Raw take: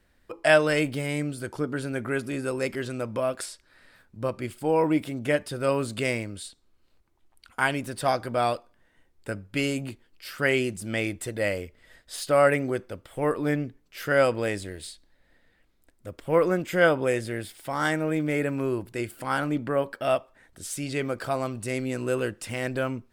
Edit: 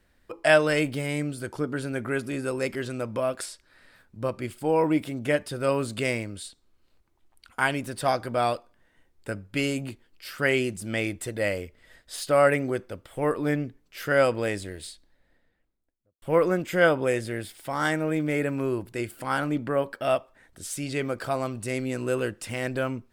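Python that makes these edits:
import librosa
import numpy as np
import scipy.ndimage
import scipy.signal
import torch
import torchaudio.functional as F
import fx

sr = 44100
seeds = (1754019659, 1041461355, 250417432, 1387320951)

y = fx.studio_fade_out(x, sr, start_s=14.83, length_s=1.39)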